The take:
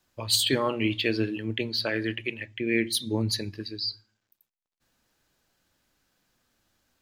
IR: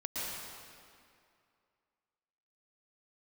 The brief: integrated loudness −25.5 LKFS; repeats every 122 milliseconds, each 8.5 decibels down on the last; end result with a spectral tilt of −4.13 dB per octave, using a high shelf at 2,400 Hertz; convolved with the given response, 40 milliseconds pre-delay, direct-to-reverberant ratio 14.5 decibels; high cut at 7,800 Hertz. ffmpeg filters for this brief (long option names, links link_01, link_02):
-filter_complex "[0:a]lowpass=7800,highshelf=frequency=2400:gain=-8,aecho=1:1:122|244|366|488:0.376|0.143|0.0543|0.0206,asplit=2[link_01][link_02];[1:a]atrim=start_sample=2205,adelay=40[link_03];[link_02][link_03]afir=irnorm=-1:irlink=0,volume=-18.5dB[link_04];[link_01][link_04]amix=inputs=2:normalize=0,volume=3.5dB"